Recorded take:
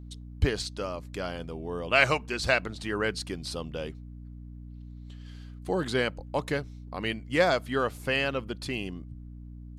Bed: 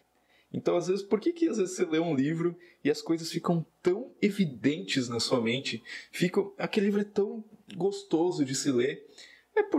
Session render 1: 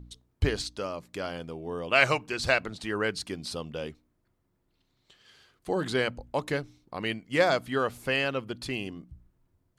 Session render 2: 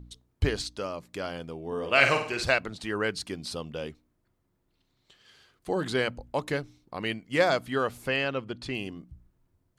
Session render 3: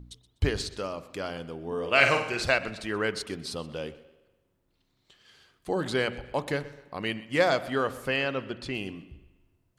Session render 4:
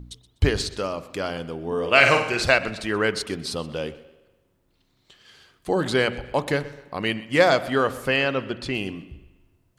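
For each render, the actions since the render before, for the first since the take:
de-hum 60 Hz, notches 5
1.67–2.44 s: flutter echo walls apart 8.6 m, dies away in 0.49 s; 8.08–8.75 s: distance through air 63 m
spring tank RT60 1.2 s, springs 41 ms, chirp 75 ms, DRR 16 dB; modulated delay 125 ms, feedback 35%, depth 69 cents, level -19 dB
trim +6 dB; peak limiter -1 dBFS, peak gain reduction 2 dB

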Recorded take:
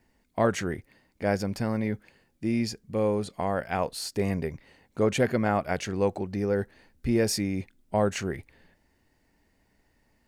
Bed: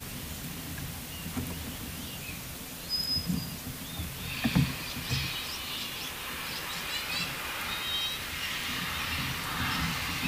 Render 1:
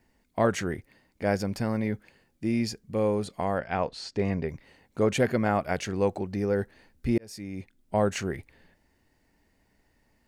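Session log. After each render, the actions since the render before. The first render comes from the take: 3.58–4.49 s: Bessel low-pass 4.5 kHz, order 4; 7.18–7.97 s: fade in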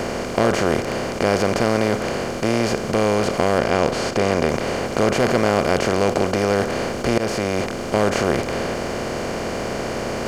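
spectral levelling over time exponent 0.2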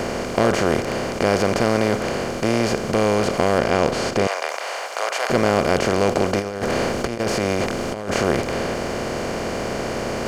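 4.27–5.30 s: high-pass 650 Hz 24 dB/octave; 6.38–8.11 s: compressor with a negative ratio -22 dBFS, ratio -0.5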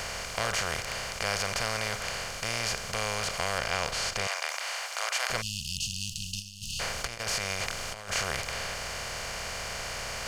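5.42–6.80 s: spectral selection erased 230–2500 Hz; amplifier tone stack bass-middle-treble 10-0-10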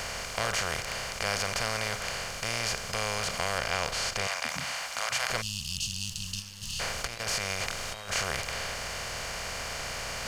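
add bed -18.5 dB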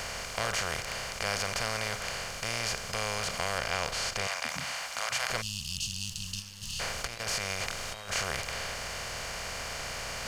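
trim -1.5 dB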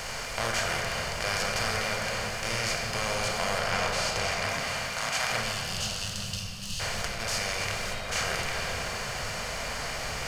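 repeats whose band climbs or falls 278 ms, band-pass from 200 Hz, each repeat 1.4 oct, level -9 dB; simulated room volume 200 m³, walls hard, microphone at 0.56 m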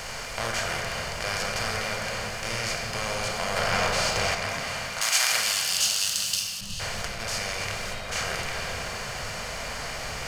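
3.56–4.35 s: waveshaping leveller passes 1; 5.01–6.61 s: tilt EQ +4 dB/octave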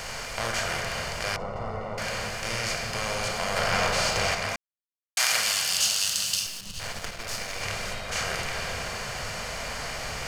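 1.36–1.98 s: Savitzky-Golay filter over 65 samples; 4.56–5.17 s: mute; 6.46–7.63 s: partial rectifier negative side -12 dB

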